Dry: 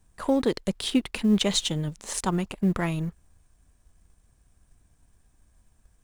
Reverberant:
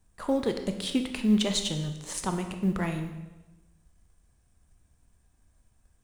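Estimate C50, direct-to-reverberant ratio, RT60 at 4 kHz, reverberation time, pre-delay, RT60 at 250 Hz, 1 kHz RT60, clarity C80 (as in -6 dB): 8.5 dB, 6.0 dB, 0.95 s, 1.1 s, 17 ms, 1.1 s, 1.1 s, 10.0 dB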